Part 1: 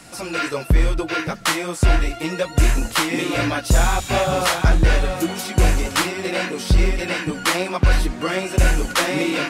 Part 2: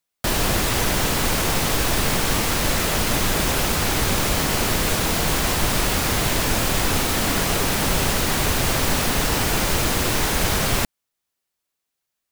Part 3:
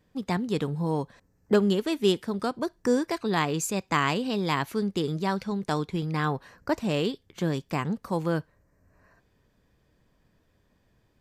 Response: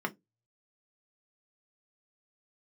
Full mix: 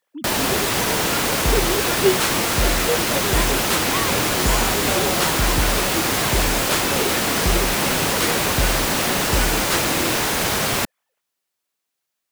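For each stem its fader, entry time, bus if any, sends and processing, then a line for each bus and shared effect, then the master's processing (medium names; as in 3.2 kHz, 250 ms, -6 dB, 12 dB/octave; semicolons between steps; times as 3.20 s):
-7.0 dB, 0.75 s, no send, none
+2.0 dB, 0.00 s, no send, high-pass 200 Hz 6 dB/octave; treble shelf 4.5 kHz -7 dB
-1.5 dB, 0.00 s, no send, formants replaced by sine waves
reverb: none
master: treble shelf 4.4 kHz +6 dB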